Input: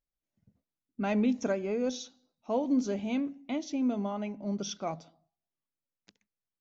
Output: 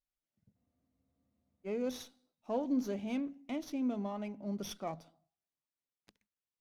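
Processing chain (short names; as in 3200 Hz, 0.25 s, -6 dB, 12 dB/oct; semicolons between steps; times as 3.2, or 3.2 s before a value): spectral freeze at 0.57, 1.09 s; running maximum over 3 samples; gain -5 dB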